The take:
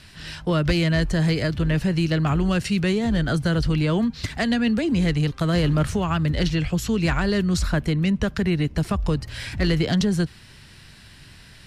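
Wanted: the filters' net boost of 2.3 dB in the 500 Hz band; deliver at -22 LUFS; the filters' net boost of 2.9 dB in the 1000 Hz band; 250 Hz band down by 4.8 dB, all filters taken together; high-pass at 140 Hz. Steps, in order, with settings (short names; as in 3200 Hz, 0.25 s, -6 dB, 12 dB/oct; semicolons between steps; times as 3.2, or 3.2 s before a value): HPF 140 Hz; bell 250 Hz -7.5 dB; bell 500 Hz +4.5 dB; bell 1000 Hz +3 dB; gain +3 dB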